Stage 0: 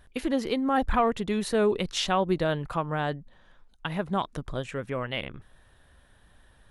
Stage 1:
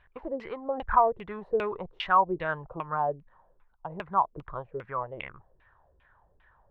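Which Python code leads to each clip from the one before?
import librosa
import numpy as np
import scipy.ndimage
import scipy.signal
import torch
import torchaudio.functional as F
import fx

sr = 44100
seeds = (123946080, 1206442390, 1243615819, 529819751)

y = fx.graphic_eq_15(x, sr, hz=(250, 1000, 6300), db=(-10, 7, -3))
y = fx.filter_lfo_lowpass(y, sr, shape='saw_down', hz=2.5, low_hz=330.0, high_hz=2700.0, q=4.1)
y = F.gain(torch.from_numpy(y), -8.0).numpy()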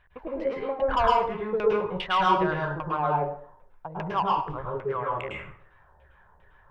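y = 10.0 ** (-18.0 / 20.0) * np.tanh(x / 10.0 ** (-18.0 / 20.0))
y = fx.rev_plate(y, sr, seeds[0], rt60_s=0.52, hf_ratio=0.8, predelay_ms=95, drr_db=-3.0)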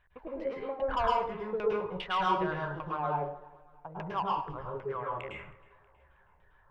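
y = fx.echo_feedback(x, sr, ms=319, feedback_pct=48, wet_db=-23.0)
y = F.gain(torch.from_numpy(y), -6.5).numpy()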